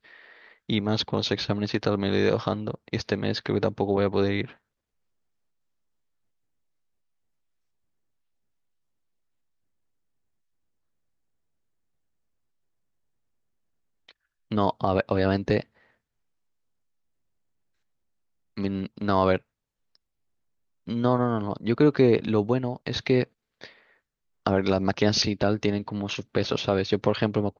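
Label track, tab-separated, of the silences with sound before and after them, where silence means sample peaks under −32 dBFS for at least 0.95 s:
4.450000	14.510000	silence
15.620000	18.580000	silence
19.380000	20.880000	silence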